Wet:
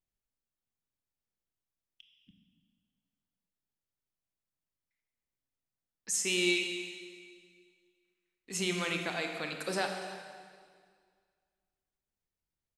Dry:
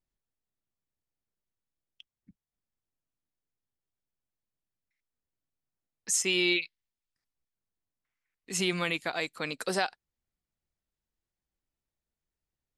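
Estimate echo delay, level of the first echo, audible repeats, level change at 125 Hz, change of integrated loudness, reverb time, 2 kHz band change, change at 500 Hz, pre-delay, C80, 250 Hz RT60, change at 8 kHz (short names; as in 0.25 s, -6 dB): 0.286 s, -18.0 dB, 1, -2.5 dB, -3.5 dB, 1.9 s, -2.5 dB, -2.0 dB, 23 ms, 5.5 dB, 1.9 s, -3.0 dB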